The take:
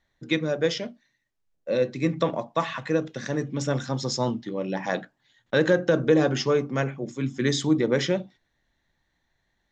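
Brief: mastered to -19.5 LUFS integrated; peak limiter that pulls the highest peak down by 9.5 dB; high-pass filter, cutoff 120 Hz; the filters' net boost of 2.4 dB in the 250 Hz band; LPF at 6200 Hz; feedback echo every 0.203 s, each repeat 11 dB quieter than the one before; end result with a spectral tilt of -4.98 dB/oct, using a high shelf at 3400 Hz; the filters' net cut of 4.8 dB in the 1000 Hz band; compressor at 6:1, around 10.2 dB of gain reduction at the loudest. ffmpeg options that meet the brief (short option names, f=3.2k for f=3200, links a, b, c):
-af "highpass=120,lowpass=6.2k,equalizer=f=250:t=o:g=4,equalizer=f=1k:t=o:g=-7.5,highshelf=f=3.4k:g=8,acompressor=threshold=-25dB:ratio=6,alimiter=limit=-22dB:level=0:latency=1,aecho=1:1:203|406|609:0.282|0.0789|0.0221,volume=13dB"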